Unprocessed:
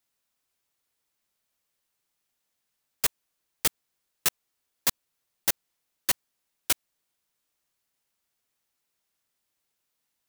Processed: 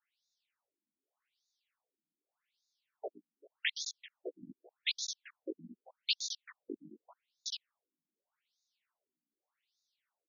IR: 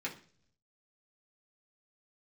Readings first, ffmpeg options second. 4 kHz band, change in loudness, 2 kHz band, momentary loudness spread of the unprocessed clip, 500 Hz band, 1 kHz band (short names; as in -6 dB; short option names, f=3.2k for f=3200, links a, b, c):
-2.0 dB, -11.0 dB, -5.0 dB, 2 LU, -2.5 dB, -16.5 dB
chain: -af "aecho=1:1:117|124|388|761|825:0.211|0.126|0.106|0.282|0.299,flanger=delay=15.5:depth=4.5:speed=0.67,afftfilt=real='re*between(b*sr/1024,230*pow(5000/230,0.5+0.5*sin(2*PI*0.84*pts/sr))/1.41,230*pow(5000/230,0.5+0.5*sin(2*PI*0.84*pts/sr))*1.41)':imag='im*between(b*sr/1024,230*pow(5000/230,0.5+0.5*sin(2*PI*0.84*pts/sr))/1.41,230*pow(5000/230,0.5+0.5*sin(2*PI*0.84*pts/sr))*1.41)':win_size=1024:overlap=0.75,volume=5.5dB"